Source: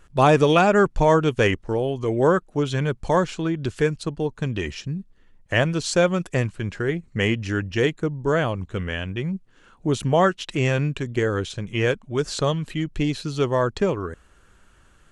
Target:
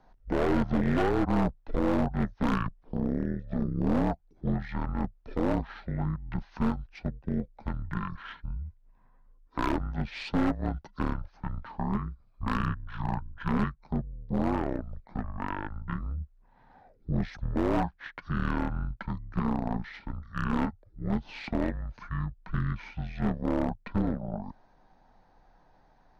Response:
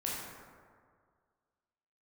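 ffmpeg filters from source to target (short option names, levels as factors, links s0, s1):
-filter_complex "[0:a]bass=f=250:g=-4,treble=f=4000:g=-12,asplit=2[s0][s1];[s1]acompressor=threshold=0.0355:ratio=12,volume=0.891[s2];[s0][s2]amix=inputs=2:normalize=0,afreqshift=-61,asetrate=25442,aresample=44100,aeval=exprs='0.211*(cos(1*acos(clip(val(0)/0.211,-1,1)))-cos(1*PI/2))+0.0596*(cos(2*acos(clip(val(0)/0.211,-1,1)))-cos(2*PI/2))':c=same,volume=0.376"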